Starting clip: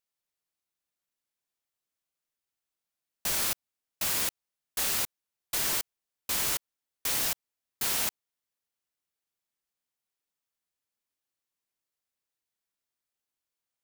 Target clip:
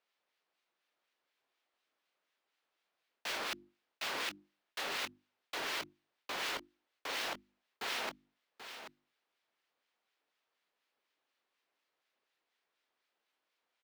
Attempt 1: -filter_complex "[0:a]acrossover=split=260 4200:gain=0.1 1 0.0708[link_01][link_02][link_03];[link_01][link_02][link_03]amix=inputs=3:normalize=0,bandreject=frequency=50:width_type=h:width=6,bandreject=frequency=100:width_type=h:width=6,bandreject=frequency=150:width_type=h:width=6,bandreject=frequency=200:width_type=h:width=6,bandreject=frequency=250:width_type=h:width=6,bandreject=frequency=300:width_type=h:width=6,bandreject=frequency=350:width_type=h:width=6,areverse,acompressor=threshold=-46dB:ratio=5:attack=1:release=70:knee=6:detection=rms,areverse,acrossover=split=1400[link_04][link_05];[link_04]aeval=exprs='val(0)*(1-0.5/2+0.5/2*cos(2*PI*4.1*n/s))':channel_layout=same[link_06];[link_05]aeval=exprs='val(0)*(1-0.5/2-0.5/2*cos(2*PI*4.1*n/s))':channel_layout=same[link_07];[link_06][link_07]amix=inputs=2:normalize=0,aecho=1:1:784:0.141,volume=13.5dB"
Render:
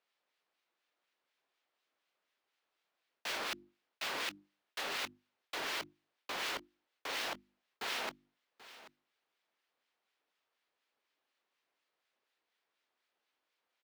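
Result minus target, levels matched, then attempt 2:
echo-to-direct −6.5 dB
-filter_complex "[0:a]acrossover=split=260 4200:gain=0.1 1 0.0708[link_01][link_02][link_03];[link_01][link_02][link_03]amix=inputs=3:normalize=0,bandreject=frequency=50:width_type=h:width=6,bandreject=frequency=100:width_type=h:width=6,bandreject=frequency=150:width_type=h:width=6,bandreject=frequency=200:width_type=h:width=6,bandreject=frequency=250:width_type=h:width=6,bandreject=frequency=300:width_type=h:width=6,bandreject=frequency=350:width_type=h:width=6,areverse,acompressor=threshold=-46dB:ratio=5:attack=1:release=70:knee=6:detection=rms,areverse,acrossover=split=1400[link_04][link_05];[link_04]aeval=exprs='val(0)*(1-0.5/2+0.5/2*cos(2*PI*4.1*n/s))':channel_layout=same[link_06];[link_05]aeval=exprs='val(0)*(1-0.5/2-0.5/2*cos(2*PI*4.1*n/s))':channel_layout=same[link_07];[link_06][link_07]amix=inputs=2:normalize=0,aecho=1:1:784:0.299,volume=13.5dB"

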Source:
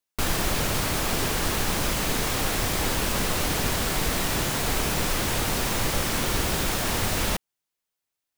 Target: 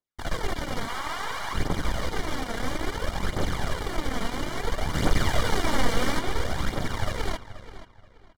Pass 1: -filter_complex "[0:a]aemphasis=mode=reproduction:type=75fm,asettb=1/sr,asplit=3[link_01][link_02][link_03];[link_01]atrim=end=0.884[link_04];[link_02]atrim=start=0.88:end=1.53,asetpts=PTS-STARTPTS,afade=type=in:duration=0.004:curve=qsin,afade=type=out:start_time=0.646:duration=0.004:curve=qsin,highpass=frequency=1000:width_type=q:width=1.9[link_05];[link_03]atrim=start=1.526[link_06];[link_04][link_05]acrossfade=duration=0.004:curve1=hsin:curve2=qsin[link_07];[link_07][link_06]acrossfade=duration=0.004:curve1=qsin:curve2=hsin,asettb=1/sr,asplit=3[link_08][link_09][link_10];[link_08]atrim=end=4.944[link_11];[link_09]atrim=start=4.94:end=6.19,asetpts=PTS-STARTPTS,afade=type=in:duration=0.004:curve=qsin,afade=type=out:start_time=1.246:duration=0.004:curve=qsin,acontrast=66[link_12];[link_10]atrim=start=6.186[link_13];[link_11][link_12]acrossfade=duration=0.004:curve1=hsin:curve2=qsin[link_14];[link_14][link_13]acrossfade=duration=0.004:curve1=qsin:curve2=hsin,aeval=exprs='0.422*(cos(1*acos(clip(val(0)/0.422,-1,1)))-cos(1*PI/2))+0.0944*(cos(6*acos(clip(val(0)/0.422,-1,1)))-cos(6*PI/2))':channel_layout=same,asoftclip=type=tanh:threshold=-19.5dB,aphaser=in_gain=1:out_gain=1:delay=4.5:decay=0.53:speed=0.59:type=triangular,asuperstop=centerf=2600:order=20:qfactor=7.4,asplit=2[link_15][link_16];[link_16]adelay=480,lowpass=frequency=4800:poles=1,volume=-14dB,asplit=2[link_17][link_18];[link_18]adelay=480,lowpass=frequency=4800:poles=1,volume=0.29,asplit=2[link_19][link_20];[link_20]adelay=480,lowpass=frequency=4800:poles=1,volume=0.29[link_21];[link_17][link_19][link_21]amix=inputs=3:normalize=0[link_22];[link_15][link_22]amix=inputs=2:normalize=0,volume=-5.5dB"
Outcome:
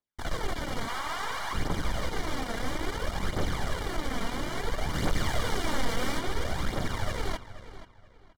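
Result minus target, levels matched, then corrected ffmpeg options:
soft clipping: distortion +9 dB
-filter_complex "[0:a]aemphasis=mode=reproduction:type=75fm,asettb=1/sr,asplit=3[link_01][link_02][link_03];[link_01]atrim=end=0.884[link_04];[link_02]atrim=start=0.88:end=1.53,asetpts=PTS-STARTPTS,afade=type=in:duration=0.004:curve=qsin,afade=type=out:start_time=0.646:duration=0.004:curve=qsin,highpass=frequency=1000:width_type=q:width=1.9[link_05];[link_03]atrim=start=1.526[link_06];[link_04][link_05]acrossfade=duration=0.004:curve1=hsin:curve2=qsin[link_07];[link_07][link_06]acrossfade=duration=0.004:curve1=qsin:curve2=hsin,asettb=1/sr,asplit=3[link_08][link_09][link_10];[link_08]atrim=end=4.944[link_11];[link_09]atrim=start=4.94:end=6.19,asetpts=PTS-STARTPTS,afade=type=in:duration=0.004:curve=qsin,afade=type=out:start_time=1.246:duration=0.004:curve=qsin,acontrast=66[link_12];[link_10]atrim=start=6.186[link_13];[link_11][link_12]acrossfade=duration=0.004:curve1=hsin:curve2=qsin[link_14];[link_14][link_13]acrossfade=duration=0.004:curve1=qsin:curve2=hsin,aeval=exprs='0.422*(cos(1*acos(clip(val(0)/0.422,-1,1)))-cos(1*PI/2))+0.0944*(cos(6*acos(clip(val(0)/0.422,-1,1)))-cos(6*PI/2))':channel_layout=same,asoftclip=type=tanh:threshold=-11dB,aphaser=in_gain=1:out_gain=1:delay=4.5:decay=0.53:speed=0.59:type=triangular,asuperstop=centerf=2600:order=20:qfactor=7.4,asplit=2[link_15][link_16];[link_16]adelay=480,lowpass=frequency=4800:poles=1,volume=-14dB,asplit=2[link_17][link_18];[link_18]adelay=480,lowpass=frequency=4800:poles=1,volume=0.29,asplit=2[link_19][link_20];[link_20]adelay=480,lowpass=frequency=4800:poles=1,volume=0.29[link_21];[link_17][link_19][link_21]amix=inputs=3:normalize=0[link_22];[link_15][link_22]amix=inputs=2:normalize=0,volume=-5.5dB"

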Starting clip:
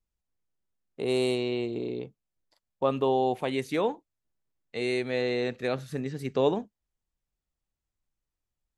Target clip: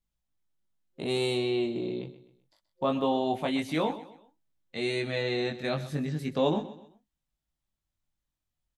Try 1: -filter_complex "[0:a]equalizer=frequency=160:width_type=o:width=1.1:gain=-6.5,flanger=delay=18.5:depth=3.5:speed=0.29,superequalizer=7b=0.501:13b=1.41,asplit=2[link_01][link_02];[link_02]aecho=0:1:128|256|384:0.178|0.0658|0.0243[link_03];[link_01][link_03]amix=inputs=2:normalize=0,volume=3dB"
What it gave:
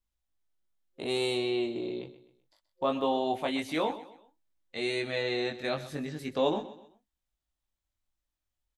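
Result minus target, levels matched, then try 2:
125 Hz band −6.5 dB
-filter_complex "[0:a]equalizer=frequency=160:width_type=o:width=1.1:gain=3.5,flanger=delay=18.5:depth=3.5:speed=0.29,superequalizer=7b=0.501:13b=1.41,asplit=2[link_01][link_02];[link_02]aecho=0:1:128|256|384:0.178|0.0658|0.0243[link_03];[link_01][link_03]amix=inputs=2:normalize=0,volume=3dB"

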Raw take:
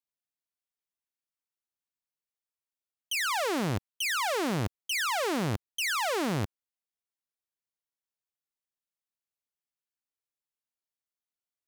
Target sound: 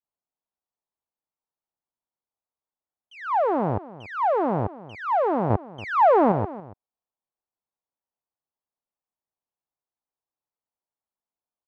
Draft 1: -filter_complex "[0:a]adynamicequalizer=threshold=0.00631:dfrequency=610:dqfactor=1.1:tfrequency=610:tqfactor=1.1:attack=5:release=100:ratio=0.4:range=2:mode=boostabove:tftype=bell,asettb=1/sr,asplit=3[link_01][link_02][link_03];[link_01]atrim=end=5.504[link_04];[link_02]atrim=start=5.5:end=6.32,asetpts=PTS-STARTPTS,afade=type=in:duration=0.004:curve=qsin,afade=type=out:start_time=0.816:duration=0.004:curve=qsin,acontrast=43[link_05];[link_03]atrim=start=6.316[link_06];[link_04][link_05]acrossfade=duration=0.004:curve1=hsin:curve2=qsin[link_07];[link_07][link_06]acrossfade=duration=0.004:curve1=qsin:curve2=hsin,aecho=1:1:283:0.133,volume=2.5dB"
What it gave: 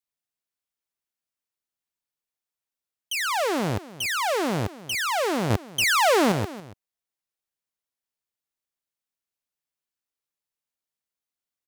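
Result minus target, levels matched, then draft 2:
1,000 Hz band −3.5 dB
-filter_complex "[0:a]adynamicequalizer=threshold=0.00631:dfrequency=610:dqfactor=1.1:tfrequency=610:tqfactor=1.1:attack=5:release=100:ratio=0.4:range=2:mode=boostabove:tftype=bell,lowpass=frequency=900:width_type=q:width=1.9,asettb=1/sr,asplit=3[link_01][link_02][link_03];[link_01]atrim=end=5.504[link_04];[link_02]atrim=start=5.5:end=6.32,asetpts=PTS-STARTPTS,afade=type=in:duration=0.004:curve=qsin,afade=type=out:start_time=0.816:duration=0.004:curve=qsin,acontrast=43[link_05];[link_03]atrim=start=6.316[link_06];[link_04][link_05]acrossfade=duration=0.004:curve1=hsin:curve2=qsin[link_07];[link_07][link_06]acrossfade=duration=0.004:curve1=qsin:curve2=hsin,aecho=1:1:283:0.133,volume=2.5dB"

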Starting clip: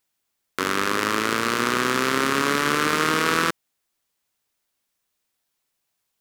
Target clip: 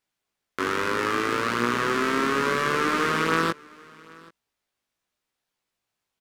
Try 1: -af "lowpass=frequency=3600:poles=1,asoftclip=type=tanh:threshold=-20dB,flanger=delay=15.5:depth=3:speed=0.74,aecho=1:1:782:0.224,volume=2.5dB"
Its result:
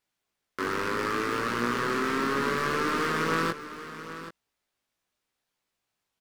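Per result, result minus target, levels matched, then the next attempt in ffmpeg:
soft clipping: distortion +12 dB; echo-to-direct +11.5 dB
-af "lowpass=frequency=3600:poles=1,asoftclip=type=tanh:threshold=-8.5dB,flanger=delay=15.5:depth=3:speed=0.74,aecho=1:1:782:0.224,volume=2.5dB"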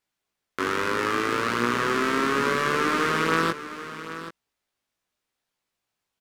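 echo-to-direct +11.5 dB
-af "lowpass=frequency=3600:poles=1,asoftclip=type=tanh:threshold=-8.5dB,flanger=delay=15.5:depth=3:speed=0.74,aecho=1:1:782:0.0596,volume=2.5dB"

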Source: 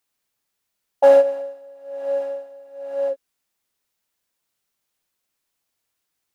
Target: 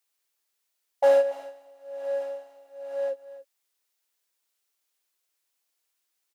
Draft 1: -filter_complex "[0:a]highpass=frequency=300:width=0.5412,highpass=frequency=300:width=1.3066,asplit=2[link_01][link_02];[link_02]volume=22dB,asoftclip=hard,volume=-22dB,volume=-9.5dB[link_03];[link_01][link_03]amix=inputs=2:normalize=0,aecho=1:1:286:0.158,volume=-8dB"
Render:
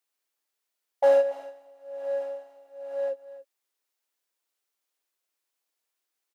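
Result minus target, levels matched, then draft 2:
4,000 Hz band −3.0 dB
-filter_complex "[0:a]highpass=frequency=300:width=0.5412,highpass=frequency=300:width=1.3066,highshelf=frequency=2000:gain=5.5,asplit=2[link_01][link_02];[link_02]volume=22dB,asoftclip=hard,volume=-22dB,volume=-9.5dB[link_03];[link_01][link_03]amix=inputs=2:normalize=0,aecho=1:1:286:0.158,volume=-8dB"

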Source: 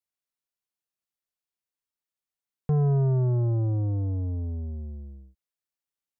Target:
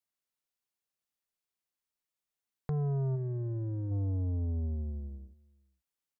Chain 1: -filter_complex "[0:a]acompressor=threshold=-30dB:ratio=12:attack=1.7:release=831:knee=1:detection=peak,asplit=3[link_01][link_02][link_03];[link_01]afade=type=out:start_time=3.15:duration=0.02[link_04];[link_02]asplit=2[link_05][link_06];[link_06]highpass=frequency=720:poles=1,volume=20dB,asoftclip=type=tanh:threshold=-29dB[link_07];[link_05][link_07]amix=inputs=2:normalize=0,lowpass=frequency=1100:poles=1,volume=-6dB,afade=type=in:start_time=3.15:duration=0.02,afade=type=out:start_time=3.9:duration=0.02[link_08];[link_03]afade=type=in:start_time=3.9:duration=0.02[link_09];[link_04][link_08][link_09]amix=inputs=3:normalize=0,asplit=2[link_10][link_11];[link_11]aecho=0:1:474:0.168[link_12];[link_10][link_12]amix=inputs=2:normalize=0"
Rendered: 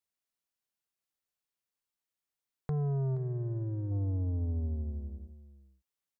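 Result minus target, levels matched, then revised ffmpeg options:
echo-to-direct +10.5 dB
-filter_complex "[0:a]acompressor=threshold=-30dB:ratio=12:attack=1.7:release=831:knee=1:detection=peak,asplit=3[link_01][link_02][link_03];[link_01]afade=type=out:start_time=3.15:duration=0.02[link_04];[link_02]asplit=2[link_05][link_06];[link_06]highpass=frequency=720:poles=1,volume=20dB,asoftclip=type=tanh:threshold=-29dB[link_07];[link_05][link_07]amix=inputs=2:normalize=0,lowpass=frequency=1100:poles=1,volume=-6dB,afade=type=in:start_time=3.15:duration=0.02,afade=type=out:start_time=3.9:duration=0.02[link_08];[link_03]afade=type=in:start_time=3.9:duration=0.02[link_09];[link_04][link_08][link_09]amix=inputs=3:normalize=0,asplit=2[link_10][link_11];[link_11]aecho=0:1:474:0.0501[link_12];[link_10][link_12]amix=inputs=2:normalize=0"

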